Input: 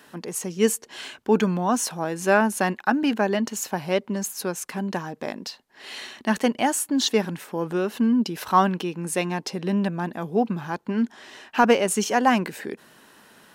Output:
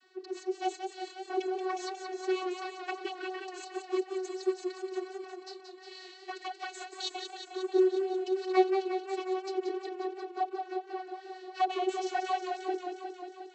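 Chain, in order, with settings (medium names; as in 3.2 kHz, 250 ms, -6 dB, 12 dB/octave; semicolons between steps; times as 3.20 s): comb filter that takes the minimum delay 3.1 ms; peaking EQ 4.3 kHz +10 dB 0.29 oct; touch-sensitive flanger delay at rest 8 ms, full sweep at -19.5 dBFS; vocoder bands 32, saw 373 Hz; 5.24–7.41 s: bass shelf 360 Hz -11 dB; modulated delay 179 ms, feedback 74%, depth 60 cents, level -7 dB; trim -3.5 dB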